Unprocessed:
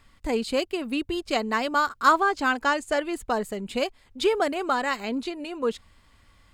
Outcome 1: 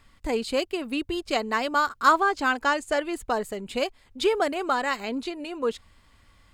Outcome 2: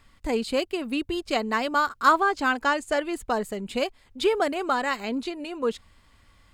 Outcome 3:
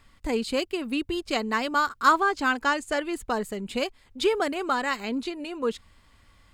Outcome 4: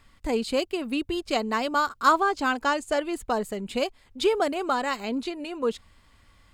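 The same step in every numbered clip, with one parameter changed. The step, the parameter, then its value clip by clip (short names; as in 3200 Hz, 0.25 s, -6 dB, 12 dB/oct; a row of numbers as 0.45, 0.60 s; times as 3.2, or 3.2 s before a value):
dynamic EQ, frequency: 200, 6100, 660, 1800 Hz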